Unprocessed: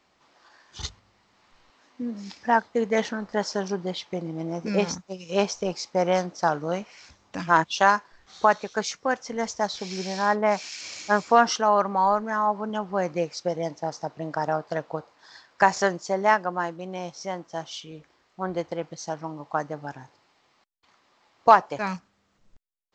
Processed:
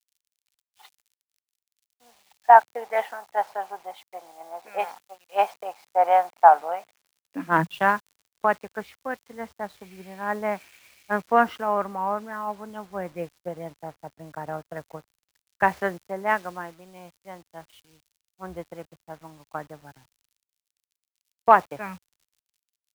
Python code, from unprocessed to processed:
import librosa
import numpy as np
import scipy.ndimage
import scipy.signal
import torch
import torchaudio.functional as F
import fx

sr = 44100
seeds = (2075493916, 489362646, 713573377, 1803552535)

y = fx.law_mismatch(x, sr, coded='A')
y = scipy.signal.sosfilt(scipy.signal.butter(4, 2600.0, 'lowpass', fs=sr, output='sos'), y)
y = fx.dmg_crackle(y, sr, seeds[0], per_s=47.0, level_db=-40.0)
y = fx.filter_sweep_highpass(y, sr, from_hz=770.0, to_hz=71.0, start_s=6.77, end_s=8.18, q=5.3)
y = fx.dynamic_eq(y, sr, hz=1000.0, q=1.0, threshold_db=-27.0, ratio=4.0, max_db=-3)
y = fx.quant_dither(y, sr, seeds[1], bits=8, dither='none')
y = fx.low_shelf(y, sr, hz=460.0, db=-2.5)
y = fx.band_widen(y, sr, depth_pct=70)
y = y * 10.0 ** (-3.0 / 20.0)